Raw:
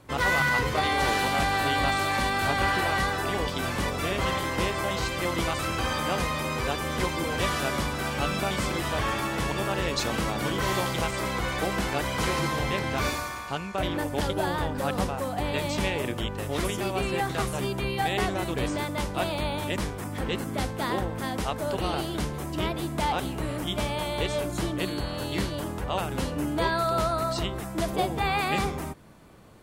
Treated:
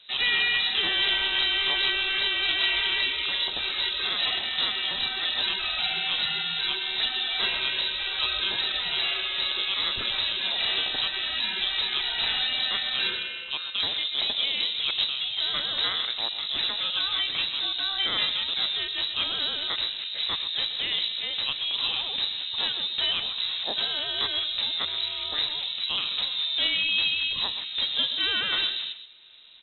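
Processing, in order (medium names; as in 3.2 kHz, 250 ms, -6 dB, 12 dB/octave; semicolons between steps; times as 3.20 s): distance through air 84 m; echo from a far wall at 22 m, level -11 dB; frequency inversion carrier 3.9 kHz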